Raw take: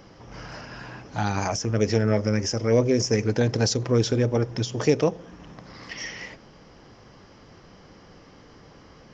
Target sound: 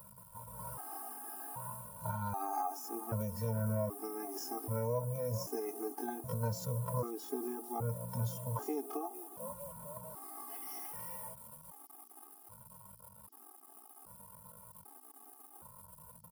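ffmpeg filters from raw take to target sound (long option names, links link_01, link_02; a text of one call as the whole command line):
ffmpeg -i in.wav -filter_complex "[0:a]highpass=frequency=77:poles=1,asplit=5[link_01][link_02][link_03][link_04][link_05];[link_02]adelay=250,afreqshift=60,volume=-17.5dB[link_06];[link_03]adelay=500,afreqshift=120,volume=-23.9dB[link_07];[link_04]adelay=750,afreqshift=180,volume=-30.3dB[link_08];[link_05]adelay=1000,afreqshift=240,volume=-36.6dB[link_09];[link_01][link_06][link_07][link_08][link_09]amix=inputs=5:normalize=0,atempo=0.56,acrossover=split=240|3500[link_10][link_11][link_12];[link_11]acrusher=bits=7:mix=0:aa=0.000001[link_13];[link_10][link_13][link_12]amix=inputs=3:normalize=0,firequalizer=gain_entry='entry(100,0);entry(250,-10);entry(530,-9);entry(930,4);entry(1800,-22);entry(6000,-19);entry(9600,11)':delay=0.05:min_phase=1,alimiter=limit=-20.5dB:level=0:latency=1:release=359,lowshelf=frequency=120:gain=-11.5,acompressor=threshold=-30dB:ratio=6,afftfilt=real='re*gt(sin(2*PI*0.64*pts/sr)*(1-2*mod(floor(b*sr/1024/220),2)),0)':imag='im*gt(sin(2*PI*0.64*pts/sr)*(1-2*mod(floor(b*sr/1024/220),2)),0)':win_size=1024:overlap=0.75,volume=2dB" out.wav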